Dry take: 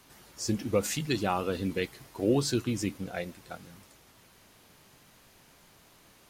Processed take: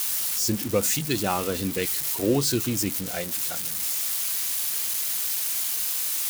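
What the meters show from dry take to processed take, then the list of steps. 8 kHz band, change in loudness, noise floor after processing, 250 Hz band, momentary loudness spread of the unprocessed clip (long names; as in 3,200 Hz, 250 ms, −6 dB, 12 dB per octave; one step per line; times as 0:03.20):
+15.0 dB, +6.5 dB, −31 dBFS, +3.0 dB, 13 LU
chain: spike at every zero crossing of −23.5 dBFS
level +3 dB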